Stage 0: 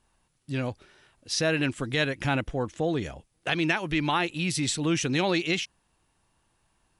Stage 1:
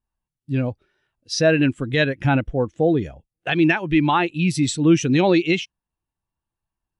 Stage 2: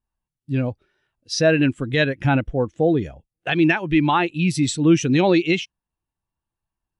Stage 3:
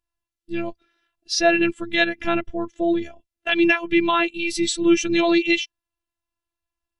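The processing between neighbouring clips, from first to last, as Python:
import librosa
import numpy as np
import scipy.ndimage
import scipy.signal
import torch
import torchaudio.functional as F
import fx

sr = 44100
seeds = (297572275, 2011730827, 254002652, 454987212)

y1 = fx.spectral_expand(x, sr, expansion=1.5)
y1 = y1 * librosa.db_to_amplitude(8.0)
y2 = y1
y3 = fx.robotise(y2, sr, hz=338.0)
y3 = fx.peak_eq(y3, sr, hz=3300.0, db=6.5, octaves=2.9)
y3 = y3 * librosa.db_to_amplitude(-1.0)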